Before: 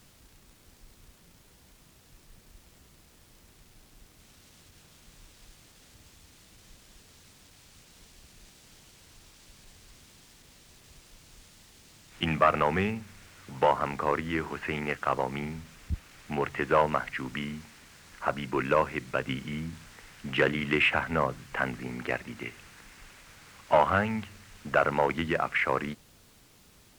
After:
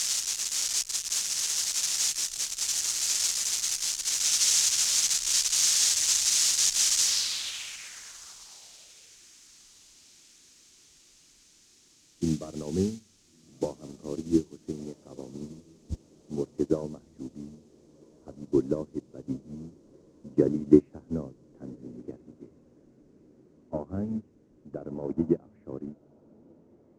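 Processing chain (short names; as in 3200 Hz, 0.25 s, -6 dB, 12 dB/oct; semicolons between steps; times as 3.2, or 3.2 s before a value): switching spikes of -16.5 dBFS; low-pass sweep 6400 Hz -> 320 Hz, 7.02–9.3; diffused feedback echo 1.368 s, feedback 68%, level -11 dB; upward expander 2.5:1, over -36 dBFS; gain +8 dB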